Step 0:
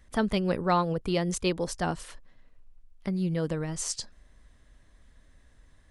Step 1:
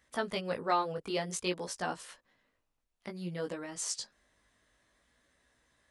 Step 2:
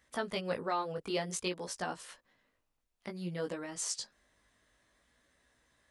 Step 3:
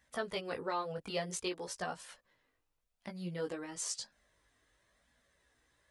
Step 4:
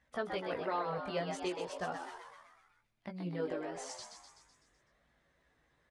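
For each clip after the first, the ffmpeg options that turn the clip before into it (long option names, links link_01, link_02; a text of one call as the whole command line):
ffmpeg -i in.wav -af "flanger=delay=16:depth=3.8:speed=0.55,highpass=frequency=460:poles=1" out.wav
ffmpeg -i in.wav -af "alimiter=limit=-22.5dB:level=0:latency=1:release=290" out.wav
ffmpeg -i in.wav -af "flanger=delay=1.1:depth=1.6:regen=-42:speed=0.98:shape=triangular,volume=2dB" out.wav
ffmpeg -i in.wav -filter_complex "[0:a]aemphasis=mode=reproduction:type=75fm,asplit=2[link_01][link_02];[link_02]asplit=7[link_03][link_04][link_05][link_06][link_07][link_08][link_09];[link_03]adelay=126,afreqshift=100,volume=-6dB[link_10];[link_04]adelay=252,afreqshift=200,volume=-10.9dB[link_11];[link_05]adelay=378,afreqshift=300,volume=-15.8dB[link_12];[link_06]adelay=504,afreqshift=400,volume=-20.6dB[link_13];[link_07]adelay=630,afreqshift=500,volume=-25.5dB[link_14];[link_08]adelay=756,afreqshift=600,volume=-30.4dB[link_15];[link_09]adelay=882,afreqshift=700,volume=-35.3dB[link_16];[link_10][link_11][link_12][link_13][link_14][link_15][link_16]amix=inputs=7:normalize=0[link_17];[link_01][link_17]amix=inputs=2:normalize=0" out.wav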